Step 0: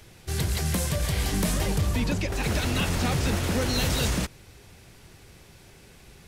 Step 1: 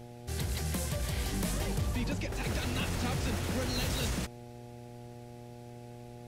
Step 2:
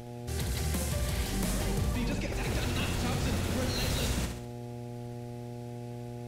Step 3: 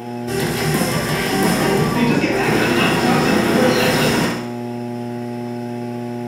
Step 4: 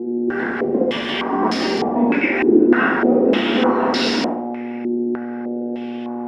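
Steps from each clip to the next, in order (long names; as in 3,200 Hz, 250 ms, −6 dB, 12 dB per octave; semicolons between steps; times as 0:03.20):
hum with harmonics 120 Hz, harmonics 7, −40 dBFS −4 dB per octave; level −7.5 dB
in parallel at −2.5 dB: upward compression, threshold −36 dBFS; on the sum: flutter between parallel walls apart 11.4 metres, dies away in 0.64 s; level −4.5 dB
high-shelf EQ 3,100 Hz +11 dB; convolution reverb RT60 0.50 s, pre-delay 3 ms, DRR −6.5 dB
low shelf with overshoot 190 Hz −8.5 dB, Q 3; low-pass on a step sequencer 3.3 Hz 360–4,600 Hz; level −5.5 dB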